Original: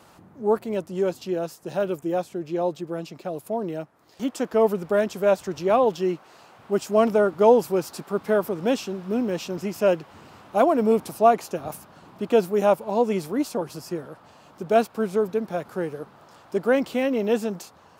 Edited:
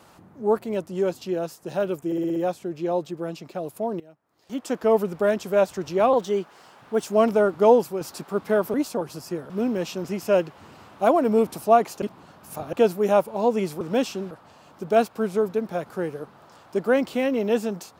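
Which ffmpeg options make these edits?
ffmpeg -i in.wav -filter_complex "[0:a]asplit=16[link_01][link_02][link_03][link_04][link_05][link_06][link_07][link_08][link_09][link_10][link_11][link_12][link_13][link_14][link_15][link_16];[link_01]atrim=end=2.122[link_17];[link_02]atrim=start=2.058:end=2.122[link_18];[link_03]atrim=start=2.058:end=2.122[link_19];[link_04]atrim=start=2.058:end=2.122[link_20];[link_05]atrim=start=2.058:end=2.122[link_21];[link_06]atrim=start=2.058:end=3.7,asetpts=PTS-STARTPTS,afade=type=out:start_time=1.638:duration=0.004:curve=hsin:silence=0.112202[link_22];[link_07]atrim=start=3.7:end=5.834,asetpts=PTS-STARTPTS,afade=type=in:duration=0.72:curve=qua:silence=0.112202[link_23];[link_08]atrim=start=5.83:end=6.84,asetpts=PTS-STARTPTS,asetrate=48510,aresample=44100[link_24];[link_09]atrim=start=6.836:end=7.8,asetpts=PTS-STARTPTS,afade=type=out:start_time=0.704:duration=0.26:silence=0.398107[link_25];[link_10]atrim=start=7.8:end=8.532,asetpts=PTS-STARTPTS,afade=type=in:duration=0.004:curve=hsin:silence=0.398107[link_26];[link_11]atrim=start=13.338:end=14.102[link_27];[link_12]atrim=start=9.028:end=11.552[link_28];[link_13]atrim=start=11.548:end=12.262,asetpts=PTS-STARTPTS,areverse[link_29];[link_14]atrim=start=12.258:end=13.342[link_30];[link_15]atrim=start=8.528:end=9.032[link_31];[link_16]atrim=start=14.098[link_32];[link_17][link_18]acrossfade=duration=0.004:curve1=hsin:curve2=hsin[link_33];[link_33][link_19]acrossfade=duration=0.004:curve1=hsin:curve2=hsin[link_34];[link_34][link_20]acrossfade=duration=0.004:curve1=hsin:curve2=hsin[link_35];[link_35][link_21]acrossfade=duration=0.004:curve1=hsin:curve2=hsin[link_36];[link_22][link_23]concat=n=2:v=0:a=1[link_37];[link_36][link_37]acrossfade=duration=0.004:curve1=hsin:curve2=hsin[link_38];[link_38][link_24]acrossfade=duration=0.004:curve1=hsin:curve2=hsin[link_39];[link_25][link_26]concat=n=2:v=0:a=1[link_40];[link_39][link_40]acrossfade=duration=0.004:curve1=hsin:curve2=hsin[link_41];[link_41][link_27]acrossfade=duration=0.004:curve1=hsin:curve2=hsin[link_42];[link_42][link_28]acrossfade=duration=0.004:curve1=hsin:curve2=hsin[link_43];[link_43][link_29]acrossfade=duration=0.004:curve1=hsin:curve2=hsin[link_44];[link_44][link_30]acrossfade=duration=0.004:curve1=hsin:curve2=hsin[link_45];[link_45][link_31]acrossfade=duration=0.004:curve1=hsin:curve2=hsin[link_46];[link_46][link_32]acrossfade=duration=0.004:curve1=hsin:curve2=hsin" out.wav

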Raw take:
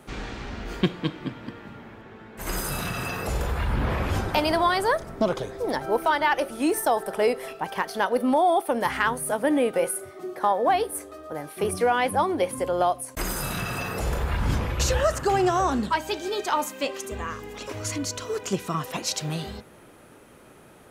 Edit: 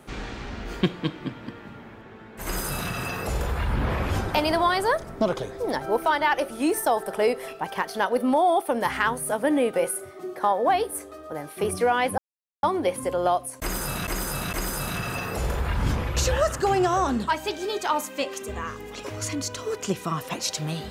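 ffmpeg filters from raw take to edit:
ffmpeg -i in.wav -filter_complex "[0:a]asplit=4[link_01][link_02][link_03][link_04];[link_01]atrim=end=12.18,asetpts=PTS-STARTPTS,afade=type=out:start_time=12.176:duration=0.004:curve=hsin,apad=pad_dur=0.45[link_05];[link_02]atrim=start=12.18:end=13.622,asetpts=PTS-STARTPTS,afade=type=in:duration=0.004:curve=hsin[link_06];[link_03]atrim=start=13.158:end=13.622[link_07];[link_04]atrim=start=13.158[link_08];[link_05][link_06]concat=n=2:v=0:a=1[link_09];[link_09][link_07]acrossfade=duration=0.004:curve1=hsin:curve2=hsin[link_10];[link_10][link_08]acrossfade=duration=0.004:curve1=hsin:curve2=hsin" out.wav

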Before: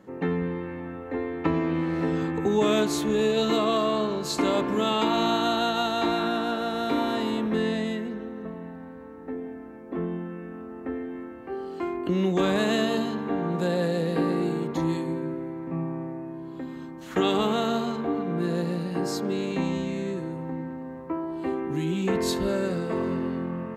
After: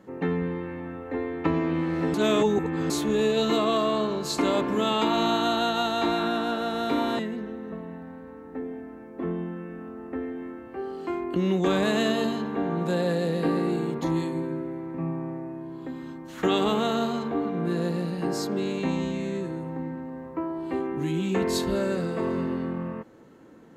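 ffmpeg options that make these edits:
ffmpeg -i in.wav -filter_complex "[0:a]asplit=4[link_01][link_02][link_03][link_04];[link_01]atrim=end=2.142[link_05];[link_02]atrim=start=2.138:end=2.902,asetpts=PTS-STARTPTS,areverse[link_06];[link_03]atrim=start=2.898:end=7.192[link_07];[link_04]atrim=start=7.918[link_08];[link_05][link_06]acrossfade=duration=0.004:curve1=hsin:curve2=hsin[link_09];[link_09][link_07]acrossfade=duration=0.004:curve1=hsin:curve2=hsin[link_10];[link_10][link_08]acrossfade=duration=0.004:curve1=hsin:curve2=hsin" out.wav

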